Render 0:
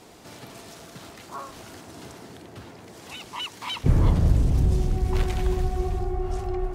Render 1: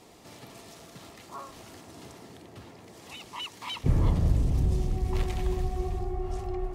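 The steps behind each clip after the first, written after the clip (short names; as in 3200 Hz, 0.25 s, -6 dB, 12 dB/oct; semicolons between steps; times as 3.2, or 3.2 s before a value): notch 1500 Hz, Q 9.7; gain -4.5 dB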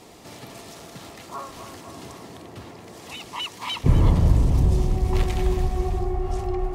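narrowing echo 0.253 s, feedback 73%, band-pass 820 Hz, level -9 dB; gain +6.5 dB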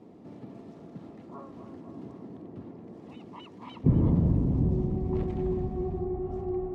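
band-pass 230 Hz, Q 1.4; gain +2.5 dB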